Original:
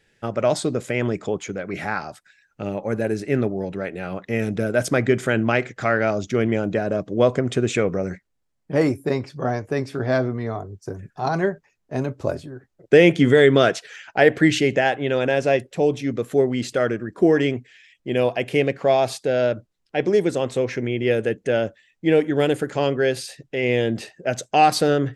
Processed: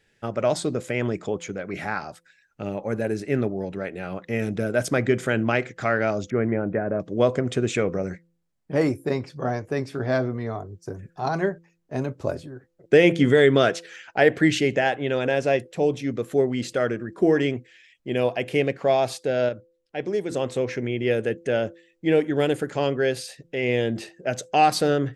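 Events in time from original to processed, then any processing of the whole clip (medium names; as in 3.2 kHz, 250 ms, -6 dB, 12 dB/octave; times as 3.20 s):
6.30–7.00 s: steep low-pass 2.1 kHz
19.49–20.31 s: gain -5 dB
whole clip: de-hum 169.2 Hz, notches 3; trim -2.5 dB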